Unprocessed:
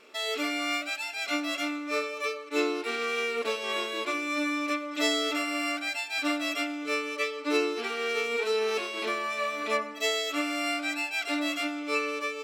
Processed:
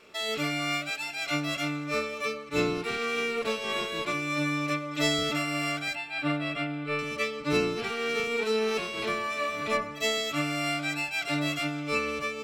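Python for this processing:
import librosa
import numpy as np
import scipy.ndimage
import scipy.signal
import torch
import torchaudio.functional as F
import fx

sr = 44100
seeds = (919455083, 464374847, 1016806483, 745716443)

y = fx.octave_divider(x, sr, octaves=1, level_db=-2.0)
y = fx.moving_average(y, sr, points=7, at=(5.95, 6.99))
y = y + 10.0 ** (-22.5 / 20.0) * np.pad(y, (int(601 * sr / 1000.0), 0))[:len(y)]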